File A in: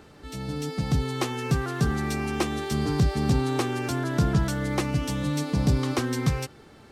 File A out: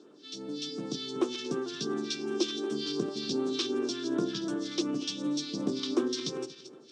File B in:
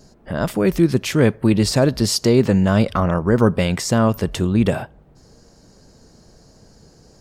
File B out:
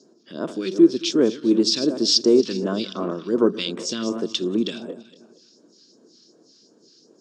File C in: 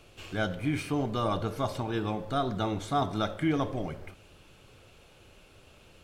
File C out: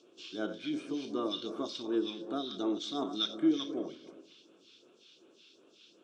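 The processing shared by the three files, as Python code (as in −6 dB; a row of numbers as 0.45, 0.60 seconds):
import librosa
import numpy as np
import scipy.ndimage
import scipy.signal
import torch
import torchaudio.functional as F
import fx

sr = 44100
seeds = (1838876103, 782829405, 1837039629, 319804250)

y = fx.reverse_delay_fb(x, sr, ms=117, feedback_pct=56, wet_db=-11.0)
y = fx.phaser_stages(y, sr, stages=2, low_hz=640.0, high_hz=3900.0, hz=2.7, feedback_pct=50)
y = fx.cabinet(y, sr, low_hz=270.0, low_slope=24, high_hz=6000.0, hz=(340.0, 570.0, 810.0, 2000.0, 3500.0, 5400.0), db=(5, -4, -9, -9, 9, 5))
y = y * librosa.db_to_amplitude(-2.0)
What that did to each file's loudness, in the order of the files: −6.0, −3.0, −3.5 LU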